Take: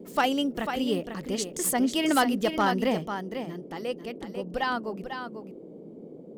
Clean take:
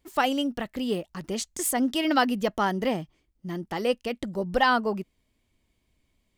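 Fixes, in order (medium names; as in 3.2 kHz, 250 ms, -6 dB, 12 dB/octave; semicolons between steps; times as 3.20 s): clip repair -15.5 dBFS; noise print and reduce 28 dB; inverse comb 495 ms -8 dB; gain correction +7 dB, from 3.07 s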